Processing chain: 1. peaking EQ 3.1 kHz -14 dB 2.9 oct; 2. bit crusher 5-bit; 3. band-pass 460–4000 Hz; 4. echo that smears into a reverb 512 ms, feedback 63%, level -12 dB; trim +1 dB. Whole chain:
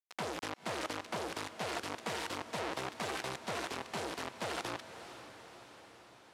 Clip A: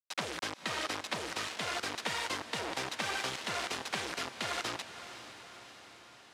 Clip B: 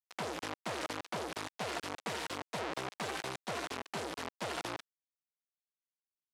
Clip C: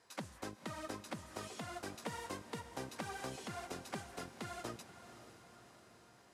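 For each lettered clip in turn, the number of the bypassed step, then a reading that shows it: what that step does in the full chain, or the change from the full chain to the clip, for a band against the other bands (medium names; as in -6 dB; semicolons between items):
1, 4 kHz band +6.0 dB; 4, echo-to-direct -10.0 dB to none; 2, distortion -7 dB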